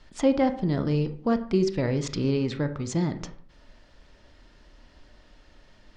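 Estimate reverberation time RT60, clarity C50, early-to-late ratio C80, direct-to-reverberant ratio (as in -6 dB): 0.50 s, 12.5 dB, 16.5 dB, 8.5 dB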